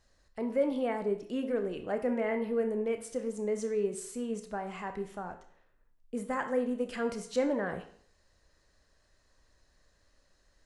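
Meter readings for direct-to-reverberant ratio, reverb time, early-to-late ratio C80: 6.0 dB, 0.60 s, 14.0 dB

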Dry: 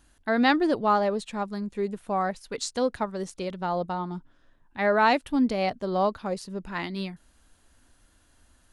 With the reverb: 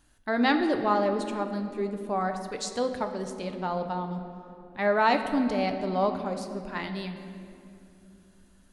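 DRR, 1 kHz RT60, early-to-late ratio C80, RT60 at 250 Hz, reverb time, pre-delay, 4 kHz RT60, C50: 6.0 dB, 2.3 s, 9.0 dB, 3.9 s, 2.7 s, 7 ms, 1.7 s, 8.0 dB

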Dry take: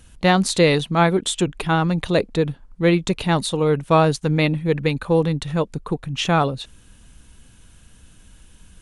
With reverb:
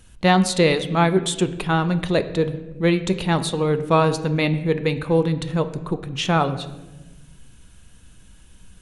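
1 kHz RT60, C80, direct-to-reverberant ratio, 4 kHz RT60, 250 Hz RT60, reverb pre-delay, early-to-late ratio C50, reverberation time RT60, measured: 0.90 s, 15.0 dB, 9.5 dB, 0.75 s, 1.8 s, 5 ms, 13.0 dB, 1.2 s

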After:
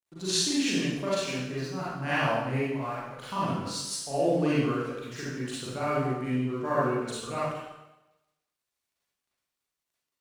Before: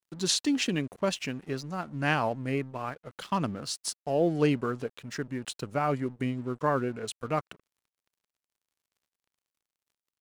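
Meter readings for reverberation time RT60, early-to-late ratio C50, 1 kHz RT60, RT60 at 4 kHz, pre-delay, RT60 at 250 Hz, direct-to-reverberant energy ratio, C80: 0.95 s, -5.5 dB, 0.95 s, 0.90 s, 35 ms, 0.85 s, -10.0 dB, 0.5 dB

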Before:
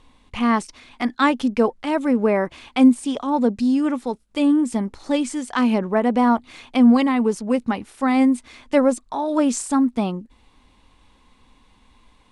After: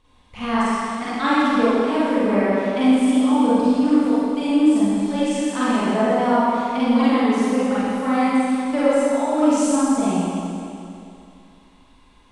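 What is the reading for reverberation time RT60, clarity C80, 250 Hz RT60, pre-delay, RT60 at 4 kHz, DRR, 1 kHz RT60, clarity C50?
2.6 s, -3.5 dB, 2.6 s, 40 ms, 2.5 s, -11.0 dB, 2.6 s, -6.0 dB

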